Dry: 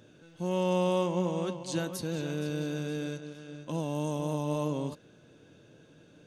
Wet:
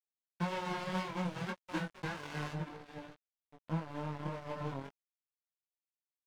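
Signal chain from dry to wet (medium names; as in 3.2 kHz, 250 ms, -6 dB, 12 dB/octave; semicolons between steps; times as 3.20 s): formants flattened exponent 0.1; reverb removal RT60 1.3 s; Bessel low-pass 1.2 kHz, order 2, from 2.52 s 590 Hz; compression 6:1, threshold -37 dBFS, peak gain reduction 7 dB; flange 1.8 Hz, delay 1.5 ms, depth 6.9 ms, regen +7%; crossover distortion -51.5 dBFS; chorus 0.32 Hz, delay 17 ms, depth 5.3 ms; trim +14.5 dB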